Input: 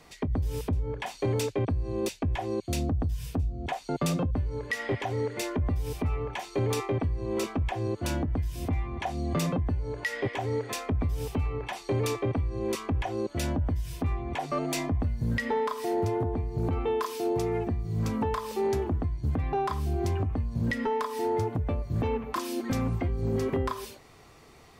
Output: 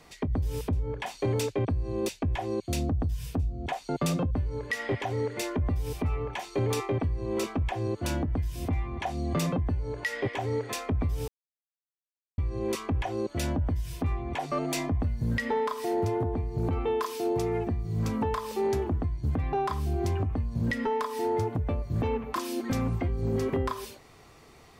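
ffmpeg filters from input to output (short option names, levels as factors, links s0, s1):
-filter_complex "[0:a]asplit=3[s0][s1][s2];[s0]atrim=end=11.28,asetpts=PTS-STARTPTS,afade=t=out:st=11.276:d=0.004:c=hsin[s3];[s1]atrim=start=11.28:end=12.38,asetpts=PTS-STARTPTS,volume=0[s4];[s2]atrim=start=12.38,asetpts=PTS-STARTPTS,afade=t=in:d=0.004:c=hsin[s5];[s3][s4][s5]concat=n=3:v=0:a=1"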